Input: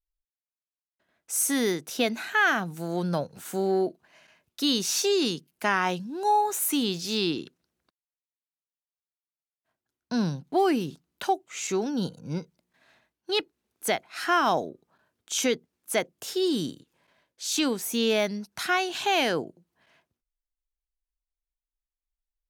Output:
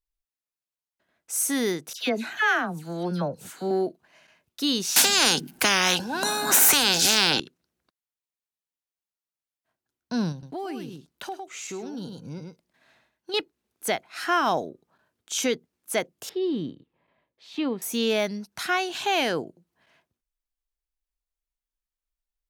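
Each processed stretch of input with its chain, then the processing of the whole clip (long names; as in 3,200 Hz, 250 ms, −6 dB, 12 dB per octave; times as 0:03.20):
0:01.93–0:03.71: high-shelf EQ 11,000 Hz −7 dB + all-pass dispersion lows, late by 84 ms, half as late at 2,000 Hz
0:04.96–0:07.40: hollow resonant body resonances 240/790/1,500 Hz, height 14 dB, ringing for 25 ms + every bin compressed towards the loudest bin 10 to 1
0:10.32–0:13.34: single-tap delay 105 ms −9 dB + downward compressor 2.5 to 1, threshold −35 dBFS
0:16.29–0:17.82: high-frequency loss of the air 420 metres + notch filter 1,500 Hz, Q 6.2
whole clip: no processing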